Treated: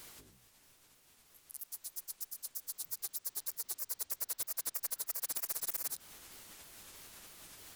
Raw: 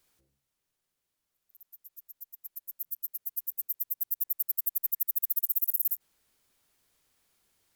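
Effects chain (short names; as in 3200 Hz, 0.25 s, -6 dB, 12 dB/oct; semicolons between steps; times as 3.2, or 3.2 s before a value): repeated pitch sweeps -6 st, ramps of 0.316 s; spectral compressor 4:1; gain -6.5 dB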